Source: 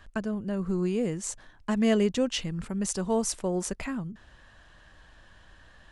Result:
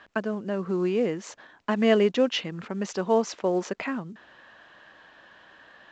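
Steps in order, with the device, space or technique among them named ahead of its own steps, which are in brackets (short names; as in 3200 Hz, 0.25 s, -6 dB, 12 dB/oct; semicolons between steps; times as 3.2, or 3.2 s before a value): telephone (BPF 290–3400 Hz; gain +6 dB; µ-law 128 kbps 16000 Hz)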